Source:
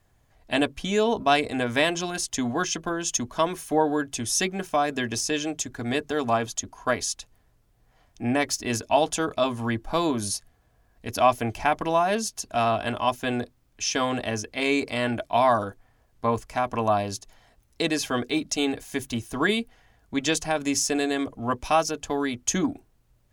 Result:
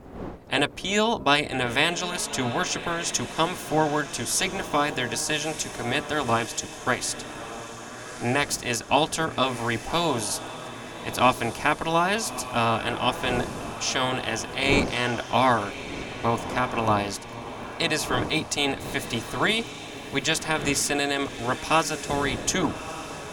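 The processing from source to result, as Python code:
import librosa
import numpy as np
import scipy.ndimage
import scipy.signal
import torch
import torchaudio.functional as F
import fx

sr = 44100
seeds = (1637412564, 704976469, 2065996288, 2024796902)

y = fx.spec_clip(x, sr, under_db=13)
y = fx.dmg_wind(y, sr, seeds[0], corner_hz=480.0, level_db=-40.0)
y = fx.echo_diffused(y, sr, ms=1223, feedback_pct=51, wet_db=-12)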